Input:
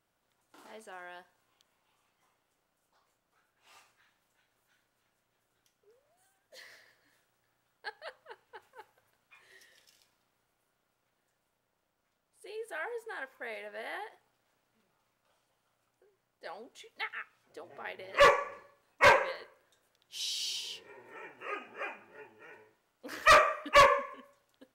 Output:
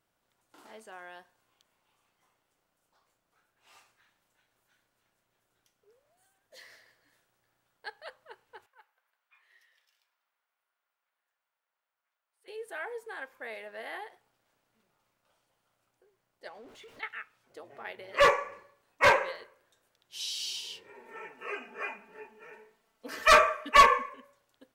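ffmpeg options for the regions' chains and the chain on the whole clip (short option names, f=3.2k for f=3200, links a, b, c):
-filter_complex "[0:a]asettb=1/sr,asplit=3[a][b][c];[a]atrim=end=8.664[d];[b]atrim=start=8.66:end=12.48,asetpts=PTS-STARTPTS,afade=t=in:d=0.004:c=qsin,afade=t=out:st=3.816:d=0.004:c=qsin,highpass=1.2k,equalizer=f=8.2k:w=0.38:g=-14.5[e];[c]atrim=start=12.476[f];[d][e]acrossfade=d=0.004:c1=hsin:c2=qsin[g];[g][f]acrossfade=d=0.004:c1=qsin:c2=hsin,asettb=1/sr,asplit=3[h][i][j];[h]atrim=end=16.484[k];[i]atrim=start=16.48:end=17.03,asetpts=PTS-STARTPTS,afade=t=in:d=0.004:c=qsin,afade=t=out:st=0.546:d=0.004:c=qsin,aeval=exprs='val(0)+0.5*0.00355*sgn(val(0))':c=same,lowpass=f=2.6k:p=1,acompressor=threshold=-48dB:ratio=2.5:attack=3.2:release=140:knee=1:detection=peak[l];[j]atrim=start=17.026[m];[k][l]acrossfade=d=0.004:c1=hsin:c2=qsin[n];[n][m]acrossfade=d=0.004:c1=qsin:c2=hsin,asettb=1/sr,asplit=3[o][p][q];[o]atrim=end=20.944[r];[p]atrim=start=20.94:end=24.09,asetpts=PTS-STARTPTS,afade=t=in:d=0.004:c=qsin,afade=t=out:st=3.146:d=0.004:c=qsin,bandreject=f=60:t=h:w=6,bandreject=f=120:t=h:w=6,aecho=1:1:4.5:0.87,atrim=end_sample=138915[s];[q]atrim=start=24.086[t];[r][s]acrossfade=d=0.004:c1=hsin:c2=qsin[u];[u][t]acrossfade=d=0.004:c1=qsin:c2=hsin"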